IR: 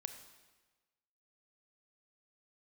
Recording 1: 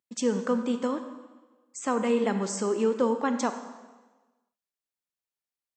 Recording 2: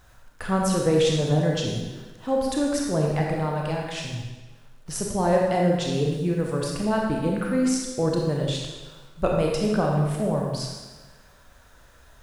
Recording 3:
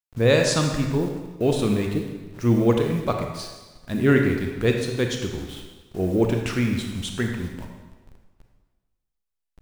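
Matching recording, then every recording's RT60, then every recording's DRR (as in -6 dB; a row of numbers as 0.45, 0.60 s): 1; 1.3, 1.3, 1.3 s; 7.5, -1.5, 2.5 dB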